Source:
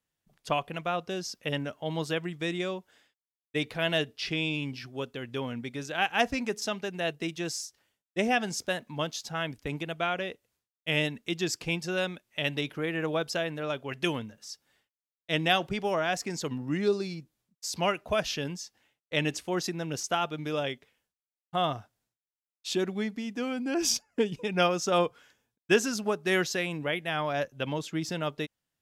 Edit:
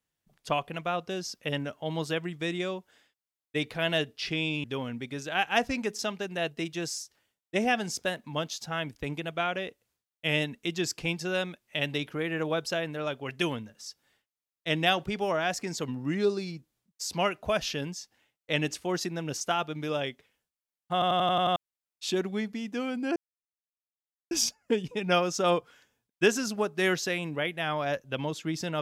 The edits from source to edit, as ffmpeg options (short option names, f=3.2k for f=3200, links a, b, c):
-filter_complex "[0:a]asplit=10[a][b][c][d][e][f][g][h][i][j];[a]atrim=end=4.642[k];[b]atrim=start=5.268:end=21.652[l];[c]atrim=start=21.558:end=21.652[m];[d]atrim=start=21.558:end=21.652[n];[e]atrim=start=21.558:end=21.652[o];[f]atrim=start=21.558:end=21.652[p];[g]atrim=start=21.558:end=21.652[q];[h]atrim=start=21.558:end=21.652[r];[i]atrim=start=22.188:end=23.79,asetpts=PTS-STARTPTS,afade=t=out:st=1.598:d=0.004:c=hsin,apad=pad_dur=1.15[s];[j]atrim=start=23.79,asetpts=PTS-STARTPTS,afade=t=in:d=0.004:c=hsin[t];[k][l]acrossfade=d=0.004:c1=hsin:c2=hsin[u];[u][m]acrossfade=d=0.004:c1=hsin:c2=hsin[v];[v][n]acrossfade=d=0.004:c1=hsin:c2=hsin[w];[w][o]acrossfade=d=0.004:c1=hsin:c2=hsin[x];[x][p]acrossfade=d=0.004:c1=hsin:c2=hsin[y];[y][q]acrossfade=d=0.004:c1=hsin:c2=hsin[z];[z][r]acrossfade=d=0.004:c1=hsin:c2=hsin[aa];[s][t]concat=n=2:v=0:a=1[ab];[aa][ab]acrossfade=d=0.004:c1=hsin:c2=hsin"